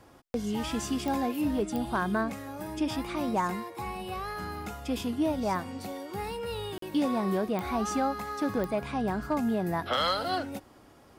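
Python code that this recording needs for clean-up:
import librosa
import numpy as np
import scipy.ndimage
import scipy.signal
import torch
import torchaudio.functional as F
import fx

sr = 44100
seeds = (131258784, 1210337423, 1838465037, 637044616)

y = fx.fix_declip(x, sr, threshold_db=-20.0)
y = fx.fix_declick_ar(y, sr, threshold=10.0)
y = fx.fix_interpolate(y, sr, at_s=(6.78,), length_ms=43.0)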